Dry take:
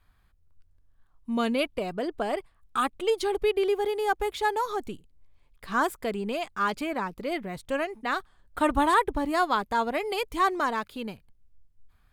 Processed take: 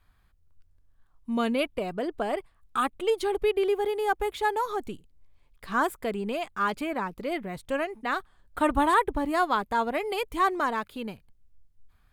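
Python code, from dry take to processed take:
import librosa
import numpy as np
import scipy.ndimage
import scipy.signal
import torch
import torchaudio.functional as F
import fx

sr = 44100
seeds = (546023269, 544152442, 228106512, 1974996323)

y = fx.dynamic_eq(x, sr, hz=5300.0, q=1.3, threshold_db=-52.0, ratio=4.0, max_db=-5)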